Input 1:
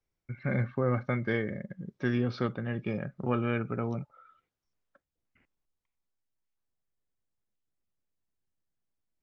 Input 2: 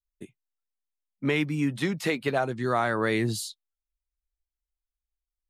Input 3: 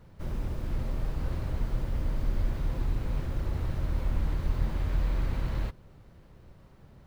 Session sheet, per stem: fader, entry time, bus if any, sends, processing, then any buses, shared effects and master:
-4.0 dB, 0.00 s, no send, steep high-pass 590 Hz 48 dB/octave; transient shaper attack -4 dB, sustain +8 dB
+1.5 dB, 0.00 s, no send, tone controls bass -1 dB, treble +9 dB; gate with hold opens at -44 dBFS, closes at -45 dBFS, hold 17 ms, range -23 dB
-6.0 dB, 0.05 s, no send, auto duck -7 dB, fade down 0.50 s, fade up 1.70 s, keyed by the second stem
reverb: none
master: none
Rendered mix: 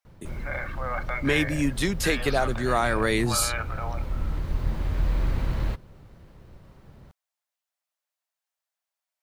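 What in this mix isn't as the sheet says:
stem 1 -4.0 dB -> +5.5 dB; stem 3 -6.0 dB -> +4.0 dB

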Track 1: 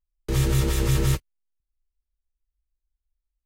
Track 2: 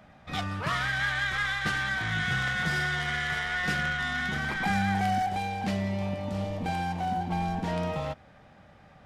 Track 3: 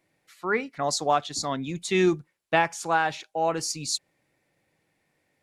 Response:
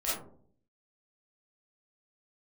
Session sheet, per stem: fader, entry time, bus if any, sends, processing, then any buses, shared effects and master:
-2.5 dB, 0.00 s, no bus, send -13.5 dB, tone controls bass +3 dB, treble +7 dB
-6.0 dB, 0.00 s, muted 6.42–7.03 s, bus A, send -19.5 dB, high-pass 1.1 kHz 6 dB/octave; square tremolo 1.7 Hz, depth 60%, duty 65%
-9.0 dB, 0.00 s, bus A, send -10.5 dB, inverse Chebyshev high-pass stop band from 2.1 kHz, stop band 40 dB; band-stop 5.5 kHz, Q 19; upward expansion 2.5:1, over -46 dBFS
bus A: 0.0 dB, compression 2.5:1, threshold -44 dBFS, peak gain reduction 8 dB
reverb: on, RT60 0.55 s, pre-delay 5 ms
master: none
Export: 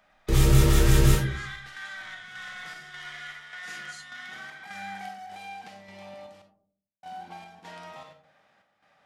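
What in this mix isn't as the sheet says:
stem 1: missing tone controls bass +3 dB, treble +7 dB; stem 3 -9.0 dB -> -19.5 dB; reverb return +9.0 dB

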